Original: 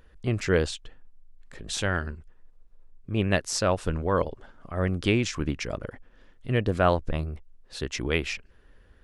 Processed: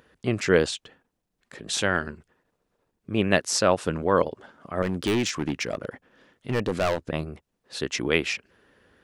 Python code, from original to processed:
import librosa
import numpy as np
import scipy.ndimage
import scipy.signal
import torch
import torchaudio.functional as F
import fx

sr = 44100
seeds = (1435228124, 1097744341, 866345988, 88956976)

y = scipy.signal.sosfilt(scipy.signal.butter(2, 160.0, 'highpass', fs=sr, output='sos'), x)
y = fx.clip_hard(y, sr, threshold_db=-24.0, at=(4.82, 7.08))
y = y * 10.0 ** (4.0 / 20.0)